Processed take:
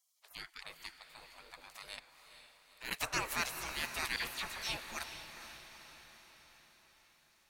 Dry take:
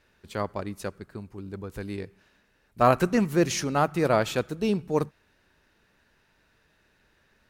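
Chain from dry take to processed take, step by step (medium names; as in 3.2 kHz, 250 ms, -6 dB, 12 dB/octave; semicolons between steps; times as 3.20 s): spectral gate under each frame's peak -25 dB weak; 1.98–2.91 s: slow attack 210 ms; 4.16–4.77 s: phase dispersion lows, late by 61 ms, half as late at 2.2 kHz; on a send: echo that smears into a reverb 461 ms, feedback 57%, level -9.5 dB; on the sum: trim +4 dB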